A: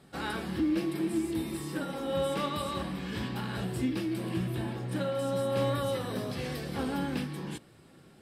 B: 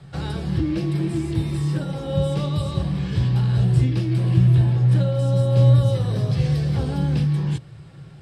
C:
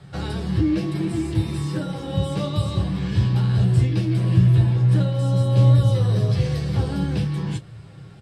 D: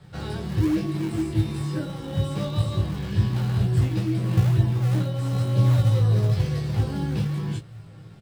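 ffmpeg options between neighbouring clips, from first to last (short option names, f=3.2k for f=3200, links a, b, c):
-filter_complex "[0:a]lowpass=6.8k,lowshelf=f=180:t=q:w=3:g=8.5,acrossover=split=310|700|3500[a][b][c][d];[c]acompressor=threshold=-50dB:ratio=6[e];[a][b][e][d]amix=inputs=4:normalize=0,volume=7dB"
-af "aecho=1:1:10|29:0.562|0.237"
-filter_complex "[0:a]asplit=2[a][b];[b]acrusher=samples=40:mix=1:aa=0.000001:lfo=1:lforange=64:lforate=2.1,volume=-10.5dB[c];[a][c]amix=inputs=2:normalize=0,asplit=2[d][e];[e]adelay=19,volume=-5dB[f];[d][f]amix=inputs=2:normalize=0,volume=-5.5dB"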